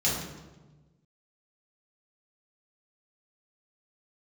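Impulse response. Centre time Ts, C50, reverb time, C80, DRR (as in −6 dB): 61 ms, 1.5 dB, 1.2 s, 4.5 dB, −7.0 dB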